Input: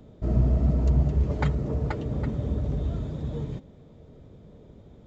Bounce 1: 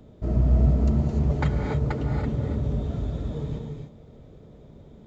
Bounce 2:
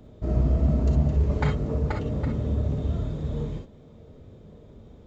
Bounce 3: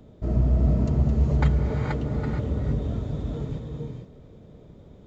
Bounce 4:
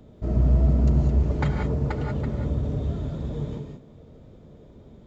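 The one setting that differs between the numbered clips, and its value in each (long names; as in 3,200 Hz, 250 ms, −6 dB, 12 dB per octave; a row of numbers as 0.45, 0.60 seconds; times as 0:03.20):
reverb whose tail is shaped and stops, gate: 320, 80, 490, 210 milliseconds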